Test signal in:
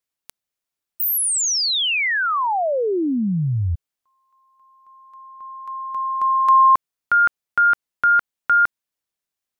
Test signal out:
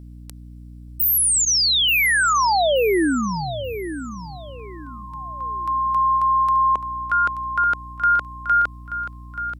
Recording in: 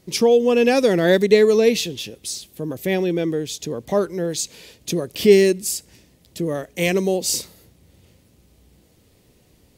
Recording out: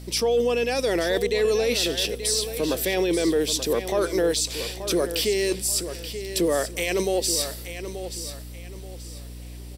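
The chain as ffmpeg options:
-filter_complex "[0:a]highpass=400,equalizer=f=7.3k:w=0.53:g=6.5,bandreject=f=6.6k:w=6,areverse,acompressor=threshold=-23dB:ratio=6:attack=0.23:release=178:knee=1:detection=peak,areverse,alimiter=limit=-23dB:level=0:latency=1:release=67,aeval=exprs='val(0)+0.00501*(sin(2*PI*60*n/s)+sin(2*PI*2*60*n/s)/2+sin(2*PI*3*60*n/s)/3+sin(2*PI*4*60*n/s)/4+sin(2*PI*5*60*n/s)/5)':c=same,asplit=2[a][b];[b]aecho=0:1:881|1762|2643:0.299|0.0896|0.0269[c];[a][c]amix=inputs=2:normalize=0,volume=8dB"

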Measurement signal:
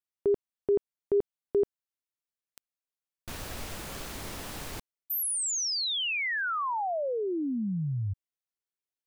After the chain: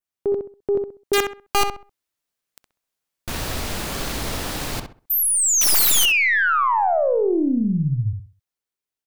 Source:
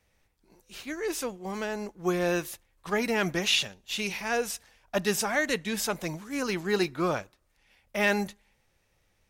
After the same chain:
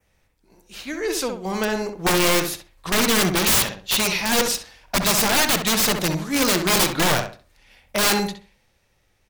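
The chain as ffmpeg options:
-filter_complex "[0:a]adynamicequalizer=threshold=0.00398:dfrequency=4200:dqfactor=1.8:tfrequency=4200:tqfactor=1.8:attack=5:release=100:ratio=0.438:range=4:mode=boostabove:tftype=bell,dynaudnorm=f=230:g=13:m=7dB,aeval=exprs='0.75*(cos(1*acos(clip(val(0)/0.75,-1,1)))-cos(1*PI/2))+0.188*(cos(2*acos(clip(val(0)/0.75,-1,1)))-cos(2*PI/2))+0.0841*(cos(5*acos(clip(val(0)/0.75,-1,1)))-cos(5*PI/2))+0.0266*(cos(6*acos(clip(val(0)/0.75,-1,1)))-cos(6*PI/2))':c=same,aeval=exprs='(mod(4.47*val(0)+1,2)-1)/4.47':c=same,asplit=2[a][b];[b]adelay=65,lowpass=f=2.2k:p=1,volume=-5.5dB,asplit=2[c][d];[d]adelay=65,lowpass=f=2.2k:p=1,volume=0.29,asplit=2[e][f];[f]adelay=65,lowpass=f=2.2k:p=1,volume=0.29,asplit=2[g][h];[h]adelay=65,lowpass=f=2.2k:p=1,volume=0.29[i];[c][e][g][i]amix=inputs=4:normalize=0[j];[a][j]amix=inputs=2:normalize=0"

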